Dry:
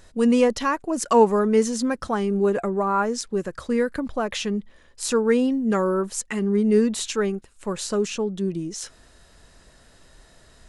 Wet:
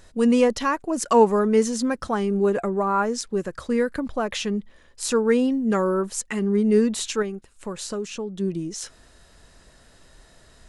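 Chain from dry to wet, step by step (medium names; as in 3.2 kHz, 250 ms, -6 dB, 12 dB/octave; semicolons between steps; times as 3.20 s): 7.22–8.40 s: compression 2:1, threshold -31 dBFS, peak gain reduction 7.5 dB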